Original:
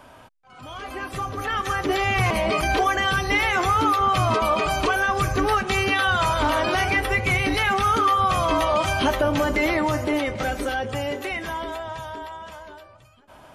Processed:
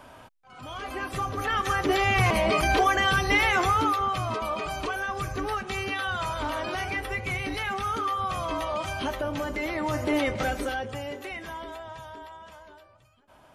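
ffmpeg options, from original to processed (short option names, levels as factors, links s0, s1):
-af "volume=2.37,afade=t=out:st=3.5:d=0.71:silence=0.398107,afade=t=in:st=9.73:d=0.53:silence=0.375837,afade=t=out:st=10.26:d=0.74:silence=0.421697"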